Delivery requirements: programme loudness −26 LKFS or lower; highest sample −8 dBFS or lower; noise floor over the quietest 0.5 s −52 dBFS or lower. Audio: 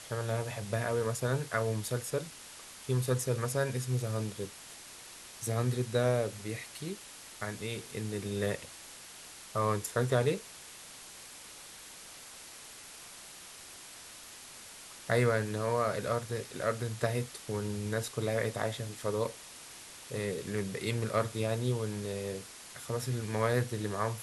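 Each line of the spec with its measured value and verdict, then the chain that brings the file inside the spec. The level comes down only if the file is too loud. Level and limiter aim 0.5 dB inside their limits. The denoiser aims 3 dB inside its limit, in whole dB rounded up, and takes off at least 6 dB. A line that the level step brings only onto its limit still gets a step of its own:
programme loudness −33.5 LKFS: in spec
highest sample −13.5 dBFS: in spec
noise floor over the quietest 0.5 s −50 dBFS: out of spec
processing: broadband denoise 6 dB, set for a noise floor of −50 dBFS

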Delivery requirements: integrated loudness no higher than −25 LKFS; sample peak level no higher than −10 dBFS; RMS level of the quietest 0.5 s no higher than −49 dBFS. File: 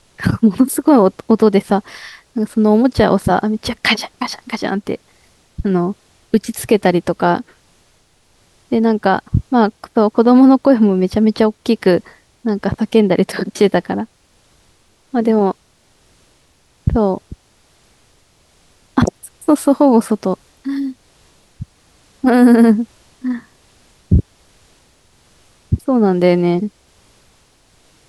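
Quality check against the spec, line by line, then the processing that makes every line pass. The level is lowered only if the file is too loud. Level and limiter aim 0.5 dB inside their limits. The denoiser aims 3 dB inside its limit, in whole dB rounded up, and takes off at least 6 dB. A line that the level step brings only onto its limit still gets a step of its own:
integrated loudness −15.5 LKFS: out of spec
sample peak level −2.0 dBFS: out of spec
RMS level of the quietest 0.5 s −55 dBFS: in spec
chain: level −10 dB

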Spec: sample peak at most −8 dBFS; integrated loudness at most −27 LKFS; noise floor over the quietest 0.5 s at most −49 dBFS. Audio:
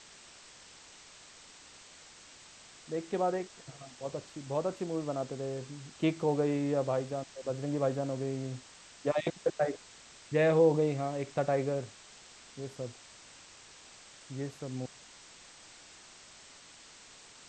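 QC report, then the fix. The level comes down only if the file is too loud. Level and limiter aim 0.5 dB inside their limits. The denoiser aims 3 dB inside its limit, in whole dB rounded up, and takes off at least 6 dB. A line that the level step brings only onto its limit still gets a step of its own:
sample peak −14.0 dBFS: in spec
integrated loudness −33.0 LKFS: in spec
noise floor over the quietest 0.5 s −54 dBFS: in spec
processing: no processing needed

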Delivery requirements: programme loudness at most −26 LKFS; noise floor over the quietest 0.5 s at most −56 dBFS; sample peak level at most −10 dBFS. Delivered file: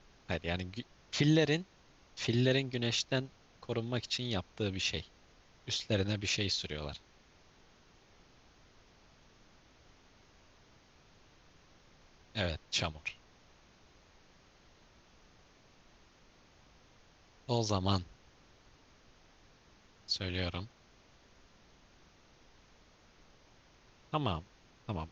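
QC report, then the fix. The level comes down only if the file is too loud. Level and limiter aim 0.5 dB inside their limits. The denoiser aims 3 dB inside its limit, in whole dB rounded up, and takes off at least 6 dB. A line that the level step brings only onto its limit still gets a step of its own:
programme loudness −34.5 LKFS: in spec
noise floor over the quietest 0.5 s −63 dBFS: in spec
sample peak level −15.5 dBFS: in spec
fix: no processing needed

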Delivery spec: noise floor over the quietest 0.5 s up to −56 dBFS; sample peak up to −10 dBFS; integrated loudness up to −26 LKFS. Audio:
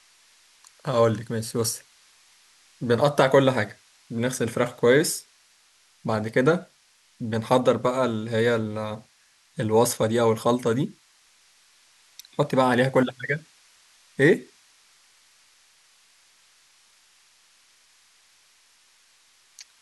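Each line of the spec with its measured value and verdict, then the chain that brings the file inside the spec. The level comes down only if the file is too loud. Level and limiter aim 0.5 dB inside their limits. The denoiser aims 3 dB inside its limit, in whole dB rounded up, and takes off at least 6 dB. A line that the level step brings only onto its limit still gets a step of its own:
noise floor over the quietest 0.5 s −61 dBFS: in spec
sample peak −4.0 dBFS: out of spec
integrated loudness −23.5 LKFS: out of spec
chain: level −3 dB
brickwall limiter −10.5 dBFS

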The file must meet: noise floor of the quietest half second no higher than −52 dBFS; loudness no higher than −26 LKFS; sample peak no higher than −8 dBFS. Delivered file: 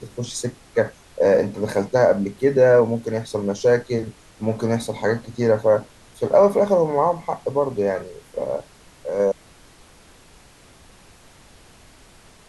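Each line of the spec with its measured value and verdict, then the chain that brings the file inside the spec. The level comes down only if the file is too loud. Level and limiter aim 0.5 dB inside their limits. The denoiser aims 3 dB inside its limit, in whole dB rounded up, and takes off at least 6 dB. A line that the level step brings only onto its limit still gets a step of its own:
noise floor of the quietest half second −49 dBFS: out of spec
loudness −21.0 LKFS: out of spec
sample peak −5.0 dBFS: out of spec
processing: level −5.5 dB

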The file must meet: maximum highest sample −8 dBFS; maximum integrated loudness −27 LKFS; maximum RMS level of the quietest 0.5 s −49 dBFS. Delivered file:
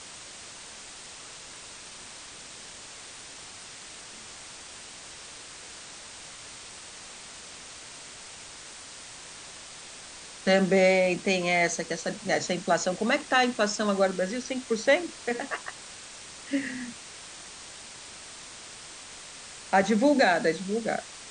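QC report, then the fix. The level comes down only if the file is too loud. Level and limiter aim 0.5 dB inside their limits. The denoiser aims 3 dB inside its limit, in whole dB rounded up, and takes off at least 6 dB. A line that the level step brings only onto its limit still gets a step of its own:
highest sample −9.5 dBFS: in spec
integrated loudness −26.0 LKFS: out of spec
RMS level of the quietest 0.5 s −45 dBFS: out of spec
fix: broadband denoise 6 dB, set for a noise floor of −45 dBFS
level −1.5 dB

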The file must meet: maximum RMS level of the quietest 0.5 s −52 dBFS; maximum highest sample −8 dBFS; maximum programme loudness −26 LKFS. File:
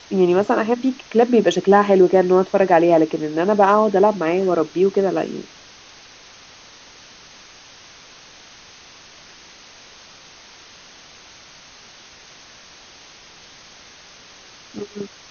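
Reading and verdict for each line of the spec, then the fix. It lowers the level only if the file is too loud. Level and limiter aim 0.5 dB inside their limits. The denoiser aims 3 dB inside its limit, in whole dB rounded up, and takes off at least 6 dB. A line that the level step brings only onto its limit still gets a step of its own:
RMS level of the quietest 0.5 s −45 dBFS: out of spec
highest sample −3.0 dBFS: out of spec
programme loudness −16.5 LKFS: out of spec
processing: level −10 dB

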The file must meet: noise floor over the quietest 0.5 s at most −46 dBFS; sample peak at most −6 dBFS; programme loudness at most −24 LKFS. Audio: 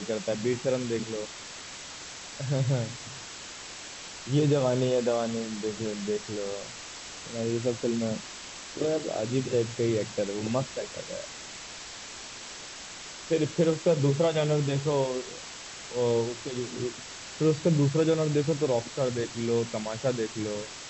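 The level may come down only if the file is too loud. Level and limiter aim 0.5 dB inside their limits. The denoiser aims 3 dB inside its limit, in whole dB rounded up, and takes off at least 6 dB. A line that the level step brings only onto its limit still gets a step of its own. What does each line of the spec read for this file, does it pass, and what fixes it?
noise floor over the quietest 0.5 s −42 dBFS: out of spec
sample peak −14.0 dBFS: in spec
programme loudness −30.0 LKFS: in spec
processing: broadband denoise 7 dB, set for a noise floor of −42 dBFS

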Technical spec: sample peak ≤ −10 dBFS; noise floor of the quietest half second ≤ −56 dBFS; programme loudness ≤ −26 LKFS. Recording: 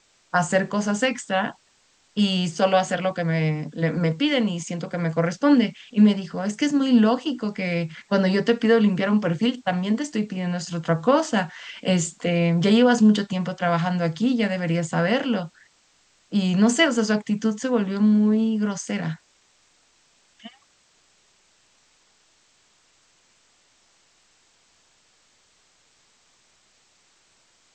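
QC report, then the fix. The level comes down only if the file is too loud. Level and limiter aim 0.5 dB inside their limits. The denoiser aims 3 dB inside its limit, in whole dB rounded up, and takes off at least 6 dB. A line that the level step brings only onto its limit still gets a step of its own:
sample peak −6.0 dBFS: out of spec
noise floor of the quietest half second −62 dBFS: in spec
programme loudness −22.0 LKFS: out of spec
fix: level −4.5 dB

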